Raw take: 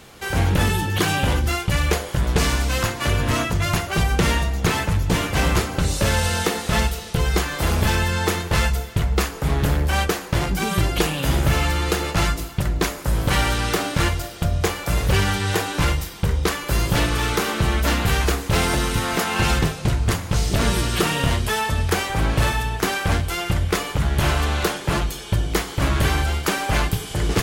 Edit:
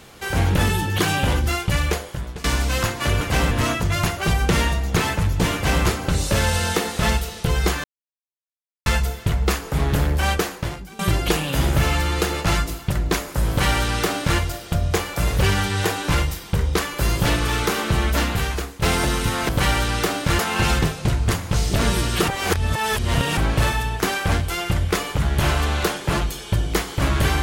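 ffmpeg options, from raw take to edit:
ffmpeg -i in.wav -filter_complex "[0:a]asplit=12[link_01][link_02][link_03][link_04][link_05][link_06][link_07][link_08][link_09][link_10][link_11][link_12];[link_01]atrim=end=2.44,asetpts=PTS-STARTPTS,afade=type=out:start_time=1.75:duration=0.69:silence=0.0794328[link_13];[link_02]atrim=start=2.44:end=3.212,asetpts=PTS-STARTPTS,afade=type=in:duration=0.004:curve=hsin:silence=0.0794328[link_14];[link_03]atrim=start=5.238:end=5.542[link_15];[link_04]atrim=start=3.208:end=7.54,asetpts=PTS-STARTPTS,afade=type=out:start_time=4.328:duration=0.004:curve=hsin[link_16];[link_05]atrim=start=7.54:end=8.56,asetpts=PTS-STARTPTS,volume=0[link_17];[link_06]atrim=start=8.56:end=10.69,asetpts=PTS-STARTPTS,afade=type=in:duration=0.004:curve=hsin,afade=type=out:start_time=1.65:duration=0.48:curve=qua:silence=0.1[link_18];[link_07]atrim=start=10.69:end=18.52,asetpts=PTS-STARTPTS,afade=type=in:duration=0.004:curve=hsin:silence=0.1,afade=type=out:start_time=7.14:duration=0.69:silence=0.237137[link_19];[link_08]atrim=start=18.52:end=19.192,asetpts=PTS-STARTPTS,afade=type=in:duration=0.004:curve=hsin:silence=0.237137[link_20];[link_09]atrim=start=13.188:end=14.092[link_21];[link_10]atrim=start=19.188:end=21.082[link_22];[link_11]atrim=start=21.078:end=22.172,asetpts=PTS-STARTPTS,areverse[link_23];[link_12]atrim=start=22.168[link_24];[link_13][link_14]concat=n=2:v=0:a=1[link_25];[link_25][link_15]acrossfade=duration=0.004:curve1=hsin:curve2=hsin[link_26];[link_16][link_17][link_18][link_19][link_20]concat=n=5:v=0:a=1[link_27];[link_26][link_27]acrossfade=duration=0.004:curve1=hsin:curve2=hsin[link_28];[link_28][link_21]acrossfade=duration=0.004:curve1=hsin:curve2=hsin[link_29];[link_29][link_22]acrossfade=duration=0.004:curve1=hsin:curve2=hsin[link_30];[link_30][link_23]acrossfade=duration=0.004:curve1=hsin:curve2=hsin[link_31];[link_31][link_24]acrossfade=duration=0.004:curve1=hsin:curve2=hsin" out.wav

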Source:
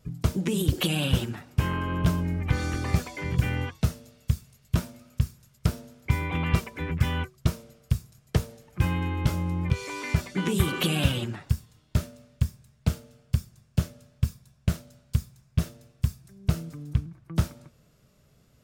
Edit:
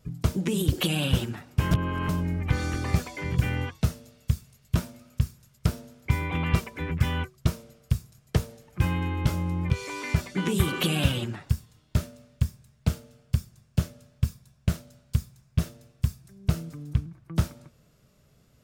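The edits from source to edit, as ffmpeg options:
ffmpeg -i in.wav -filter_complex "[0:a]asplit=3[link_01][link_02][link_03];[link_01]atrim=end=1.712[link_04];[link_02]atrim=start=1.708:end=2.092,asetpts=PTS-STARTPTS,areverse[link_05];[link_03]atrim=start=2.088[link_06];[link_04][link_05]acrossfade=duration=0.004:curve1=hsin:curve2=hsin[link_07];[link_07][link_06]acrossfade=duration=0.004:curve1=hsin:curve2=hsin" out.wav

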